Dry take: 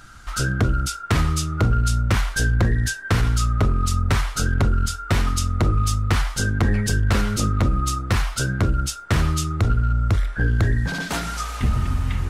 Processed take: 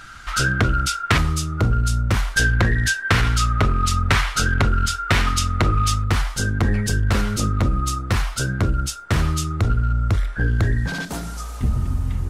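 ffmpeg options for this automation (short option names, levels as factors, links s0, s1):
-af "asetnsamples=n=441:p=0,asendcmd='1.18 equalizer g -1;2.37 equalizer g 8.5;6.04 equalizer g 0;11.05 equalizer g -11',equalizer=f=2300:t=o:w=2.5:g=8.5"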